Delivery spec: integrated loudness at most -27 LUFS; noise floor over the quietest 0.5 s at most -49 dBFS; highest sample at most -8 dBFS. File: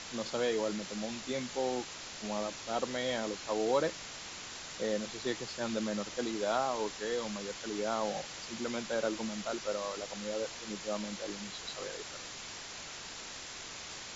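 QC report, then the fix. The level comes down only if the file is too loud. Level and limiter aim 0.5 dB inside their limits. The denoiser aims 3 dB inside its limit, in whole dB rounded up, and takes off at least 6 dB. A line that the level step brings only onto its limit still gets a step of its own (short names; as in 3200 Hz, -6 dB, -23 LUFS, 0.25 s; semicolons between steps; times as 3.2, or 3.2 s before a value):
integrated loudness -36.5 LUFS: OK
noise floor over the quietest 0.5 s -45 dBFS: fail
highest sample -17.5 dBFS: OK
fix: denoiser 7 dB, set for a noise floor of -45 dBFS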